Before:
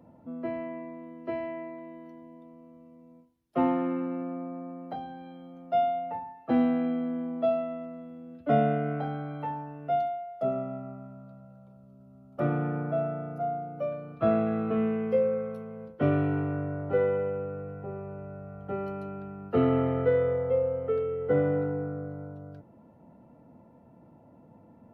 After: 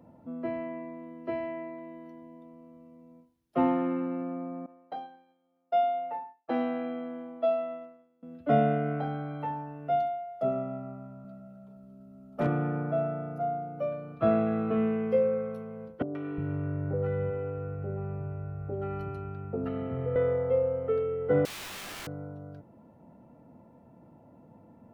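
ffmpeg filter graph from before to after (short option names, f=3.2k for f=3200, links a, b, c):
-filter_complex "[0:a]asettb=1/sr,asplit=3[a][b][c];[a]atrim=end=4.664[d];[b]atrim=start=4.66:end=8.23,asetpts=PTS-STARTPTS,afade=t=in:d=0.004:c=qsin,afade=t=out:st=3.566:d=0.004:c=qsin,highpass=370,agate=range=-33dB:threshold=-38dB:ratio=3:release=100:detection=peak[e];[c]atrim=start=8.226[f];[d][e]acrossfade=d=0.004:c1=hsin:c2=qsin[g];[g][f]acrossfade=d=0.004:c1=qsin:c2=hsin,asettb=1/sr,asplit=3[h][i][j];[h]atrim=end=11.244[k];[i]atrim=start=11.24:end=12.47,asetpts=PTS-STARTPTS,afade=t=in:d=0.004:c=qsin,afade=t=out:st=1.226:d=0.004:c=qsin,aecho=1:1:4.6:0.8,atrim=end_sample=54243,volume=20.5dB,asoftclip=hard,volume=-20.5dB[l];[j]atrim=start=12.466[m];[k][l]acrossfade=d=0.004:c1=hsin:c2=qsin[n];[n][m]acrossfade=d=0.004:c1=qsin:c2=hsin,asettb=1/sr,asplit=3[o][p][q];[o]atrim=end=16.024[r];[p]atrim=start=16.02:end=20.16,asetpts=PTS-STARTPTS,afade=t=in:d=0.004:c=qsin,afade=t=out:st=4.136:d=0.004:c=qsin,lowshelf=f=190:g=11,acompressor=threshold=-26dB:ratio=8:attack=3.2:release=140:knee=1:detection=peak,acrossover=split=200|770[s][t][u];[u]adelay=130[v];[s]adelay=360[w];[w][t][v]amix=inputs=3:normalize=0,atrim=end_sample=182574[x];[q]atrim=start=20.156[y];[r][x]acrossfade=d=0.004:c1=hsin:c2=qsin[z];[z][y]acrossfade=d=0.004:c1=qsin:c2=hsin,asettb=1/sr,asplit=3[aa][ab][ac];[aa]atrim=end=21.454[ad];[ab]atrim=start=21.45:end=22.07,asetpts=PTS-STARTPTS,afade=t=in:d=0.004:c=qsin,afade=t=out:st=0.616:d=0.004:c=qsin,equalizer=f=500:w=1.4:g=5.5,acompressor=threshold=-28dB:ratio=8:attack=3.2:release=140:knee=1:detection=peak,aeval=exprs='(mod(66.8*val(0)+1,2)-1)/66.8':c=same[ae];[ac]atrim=start=22.066[af];[ad][ae]acrossfade=d=0.004:c1=hsin:c2=qsin[ag];[ag][af]acrossfade=d=0.004:c1=qsin:c2=hsin"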